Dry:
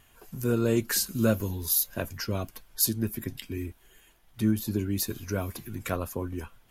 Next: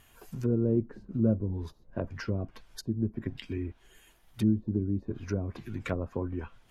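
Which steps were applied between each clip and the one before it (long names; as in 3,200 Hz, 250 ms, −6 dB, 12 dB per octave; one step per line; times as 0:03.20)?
treble cut that deepens with the level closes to 410 Hz, closed at −25 dBFS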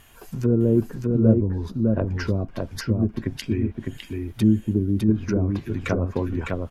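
single-tap delay 606 ms −3.5 dB
level +7.5 dB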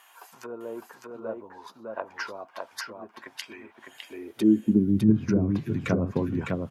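high-pass filter sweep 900 Hz → 140 Hz, 0:03.88–0:04.96
level −3 dB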